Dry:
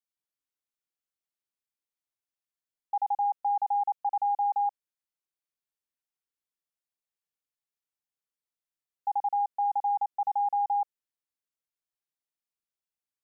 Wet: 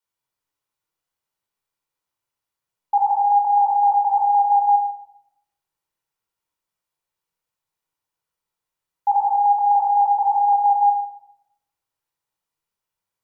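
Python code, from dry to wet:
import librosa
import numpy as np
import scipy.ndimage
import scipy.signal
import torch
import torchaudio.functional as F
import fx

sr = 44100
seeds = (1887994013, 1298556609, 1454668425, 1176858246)

y = fx.peak_eq(x, sr, hz=920.0, db=7.5, octaves=1.1)
y = fx.room_shoebox(y, sr, seeds[0], volume_m3=2300.0, walls='furnished', distance_m=4.7)
y = y * 10.0 ** (3.0 / 20.0)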